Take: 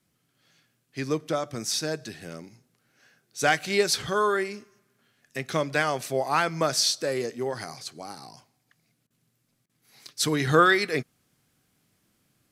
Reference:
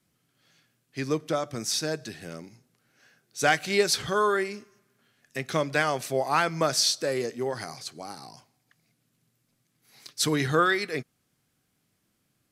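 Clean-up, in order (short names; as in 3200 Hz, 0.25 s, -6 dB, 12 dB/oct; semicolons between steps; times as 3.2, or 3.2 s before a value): interpolate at 9.07/9.66, 33 ms; gain 0 dB, from 10.47 s -4 dB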